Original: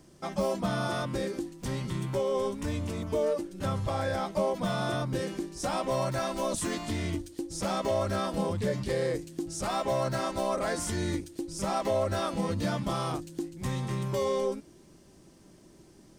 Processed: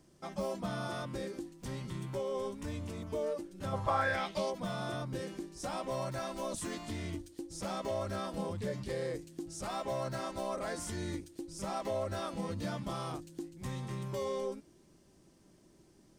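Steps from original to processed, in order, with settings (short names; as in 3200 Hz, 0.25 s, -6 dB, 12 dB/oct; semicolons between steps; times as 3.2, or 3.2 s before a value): 3.72–4.5 bell 650 Hz -> 5100 Hz +14.5 dB 1.5 oct; gain -7.5 dB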